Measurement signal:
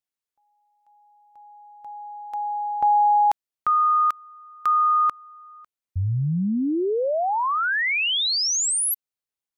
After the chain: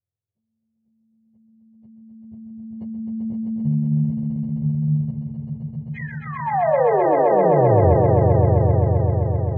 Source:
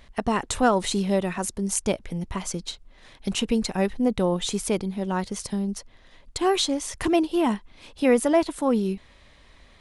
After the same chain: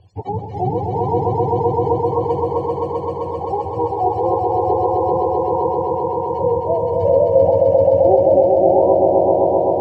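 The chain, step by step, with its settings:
frequency axis turned over on the octave scale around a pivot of 430 Hz
low-pass filter 1,500 Hz 12 dB per octave
dynamic equaliser 560 Hz, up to +5 dB, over −38 dBFS, Q 2.6
in parallel at +0.5 dB: downward compressor, threshold −33 dBFS
on the sum: phaser with its sweep stopped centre 580 Hz, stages 4
on a send: echo that builds up and dies away 130 ms, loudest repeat 5, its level −3 dB
on the sum: level +2.5 dB

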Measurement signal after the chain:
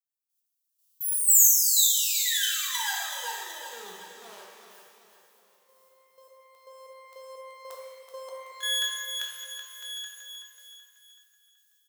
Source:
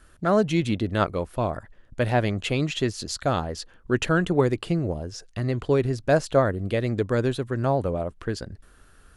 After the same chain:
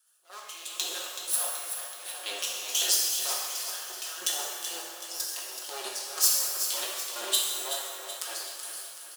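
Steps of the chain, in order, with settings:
lower of the sound and its delayed copy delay 5.5 ms
high-pass filter 440 Hz 24 dB per octave
parametric band 2,100 Hz −12.5 dB 0.42 octaves
downward compressor 2.5 to 1, threshold −45 dBFS
transient designer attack −6 dB, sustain +12 dB
automatic gain control gain up to 13.5 dB
first difference
gate pattern "...x....xx...xx" 153 BPM −12 dB
repeating echo 378 ms, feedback 49%, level −8.5 dB
reverb with rising layers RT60 1.3 s, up +12 semitones, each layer −8 dB, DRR −2 dB
level +6 dB

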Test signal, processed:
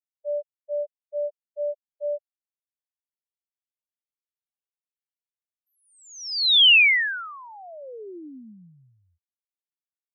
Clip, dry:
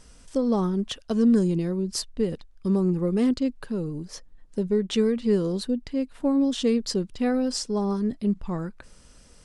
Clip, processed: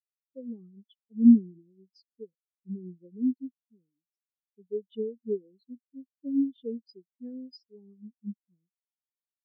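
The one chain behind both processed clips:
meter weighting curve D
every bin expanded away from the loudest bin 4 to 1

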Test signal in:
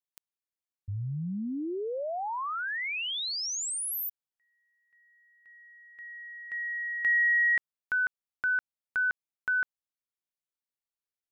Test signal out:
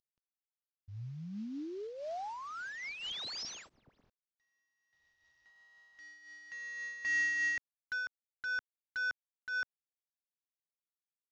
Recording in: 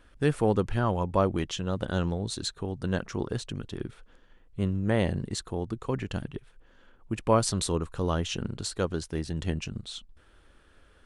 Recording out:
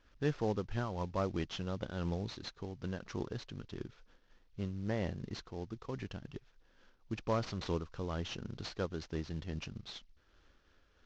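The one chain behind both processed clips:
variable-slope delta modulation 32 kbit/s
amplitude modulation by smooth noise, depth 65%
level −5.5 dB

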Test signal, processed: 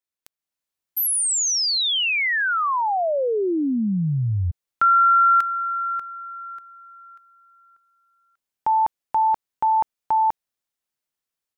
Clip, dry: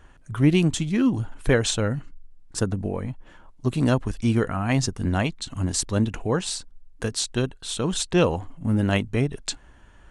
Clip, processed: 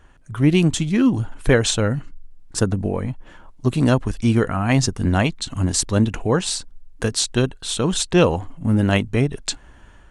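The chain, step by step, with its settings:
automatic gain control gain up to 6 dB

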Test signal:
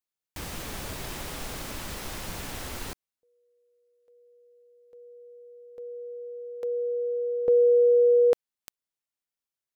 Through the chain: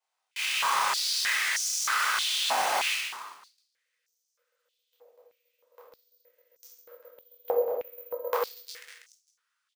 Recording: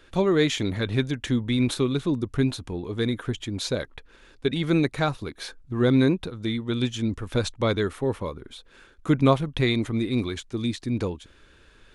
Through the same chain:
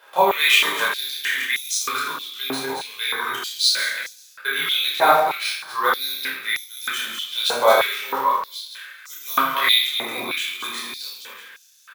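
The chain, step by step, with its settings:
delay that plays each chunk backwards 133 ms, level −5.5 dB
reverse bouncing-ball delay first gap 30 ms, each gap 1.5×, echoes 5
rectangular room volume 600 cubic metres, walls furnished, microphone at 5 metres
bad sample-rate conversion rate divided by 3×, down none, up hold
high-pass on a step sequencer 3.2 Hz 770–6,000 Hz
level −1.5 dB

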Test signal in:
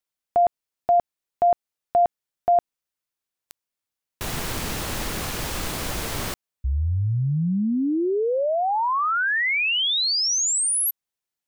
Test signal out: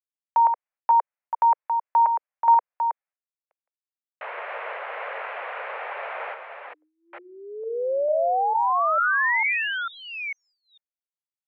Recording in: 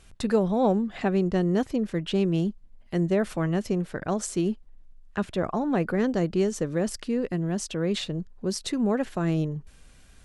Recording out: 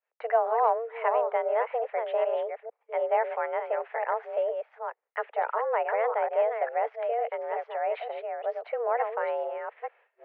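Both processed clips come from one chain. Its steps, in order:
delay that plays each chunk backwards 449 ms, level −6 dB
single-sideband voice off tune +230 Hz 280–2,200 Hz
downward expander −51 dBFS

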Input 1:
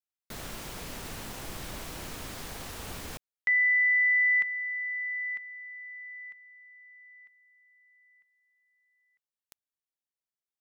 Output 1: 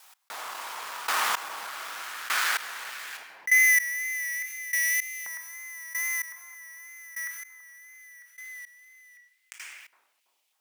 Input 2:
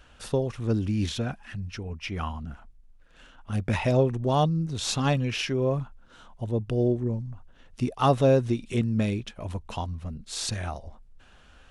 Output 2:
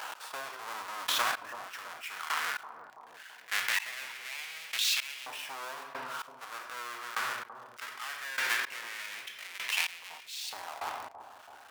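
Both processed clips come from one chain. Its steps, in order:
each half-wave held at its own peak
rectangular room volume 420 cubic metres, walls mixed, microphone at 0.58 metres
tape wow and flutter 2.1 Hz 41 cents
brickwall limiter −15 dBFS
auto-filter high-pass saw up 0.19 Hz 880–2,600 Hz
speech leveller within 4 dB 2 s
gate pattern "x.......x" 111 BPM −24 dB
bucket-brigade delay 331 ms, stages 2,048, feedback 44%, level −21.5 dB
envelope flattener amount 50%
level −2 dB

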